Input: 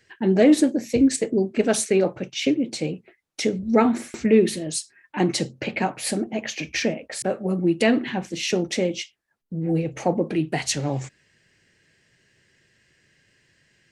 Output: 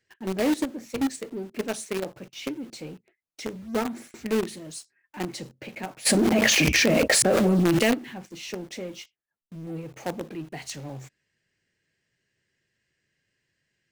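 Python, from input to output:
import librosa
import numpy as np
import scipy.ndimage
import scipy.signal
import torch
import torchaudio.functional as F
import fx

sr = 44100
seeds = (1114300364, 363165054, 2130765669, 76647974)

p1 = fx.quant_companded(x, sr, bits=2)
p2 = x + F.gain(torch.from_numpy(p1), -9.0).numpy()
p3 = fx.env_flatten(p2, sr, amount_pct=100, at=(6.05, 7.93), fade=0.02)
y = F.gain(torch.from_numpy(p3), -14.0).numpy()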